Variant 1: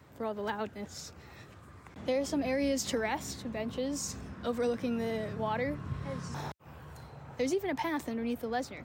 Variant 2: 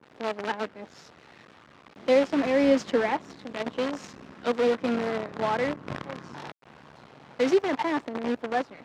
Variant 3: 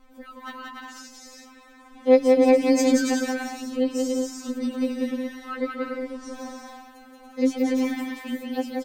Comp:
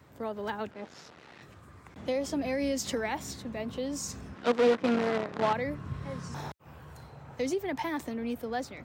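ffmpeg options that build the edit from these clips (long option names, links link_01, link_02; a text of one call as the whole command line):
ffmpeg -i take0.wav -i take1.wav -filter_complex "[1:a]asplit=2[link_01][link_02];[0:a]asplit=3[link_03][link_04][link_05];[link_03]atrim=end=0.712[link_06];[link_01]atrim=start=0.708:end=1.422[link_07];[link_04]atrim=start=1.418:end=4.362[link_08];[link_02]atrim=start=4.358:end=5.532[link_09];[link_05]atrim=start=5.528[link_10];[link_06][link_07]acrossfade=duration=0.004:curve1=hsin:curve2=hsin[link_11];[link_11][link_08]acrossfade=duration=0.004:curve1=hsin:curve2=hsin[link_12];[link_12][link_09]acrossfade=duration=0.004:curve1=hsin:curve2=hsin[link_13];[link_13][link_10]acrossfade=duration=0.004:curve1=hsin:curve2=hsin" out.wav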